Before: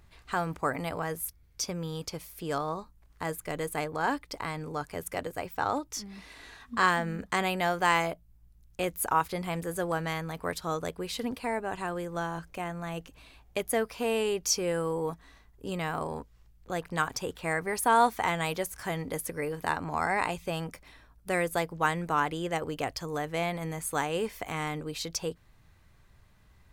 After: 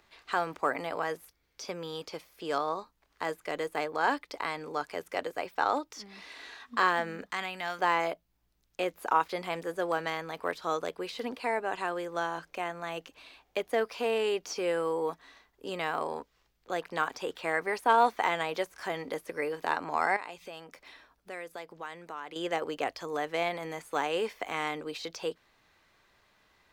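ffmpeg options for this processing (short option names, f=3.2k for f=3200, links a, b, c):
-filter_complex "[0:a]asettb=1/sr,asplit=3[a][b][c];[a]atrim=end=7.314[d];[b]atrim=start=7.31:end=7.79,asetpts=PTS-STARTPTS,afade=t=in:d=0.004:c=qsin,afade=t=out:st=0.476:d=0.004:c=qsin,equalizer=f=460:t=o:w=1.8:g=-14[e];[c]atrim=start=7.786[f];[d][e]acrossfade=d=0.004:c1=hsin:c2=qsin[g];[g][f]acrossfade=d=0.004:c1=qsin:c2=hsin,asettb=1/sr,asplit=3[h][i][j];[h]atrim=end=20.164[k];[i]atrim=start=20.16:end=22.36,asetpts=PTS-STARTPTS,afade=t=in:d=0.004:c=qsin,afade=t=out:st=2.196:d=0.004:c=qsin,acompressor=threshold=-43dB:ratio=3:attack=3.2:release=140:knee=1:detection=peak[l];[j]atrim=start=22.356[m];[k][l]acrossfade=d=0.004:c1=hsin:c2=qsin[n];[n][m]acrossfade=d=0.004:c1=qsin:c2=hsin,aemphasis=mode=production:type=50fm,deesser=0.65,acrossover=split=270 5300:gain=0.1 1 0.0794[o][p][q];[o][p][q]amix=inputs=3:normalize=0,volume=2dB"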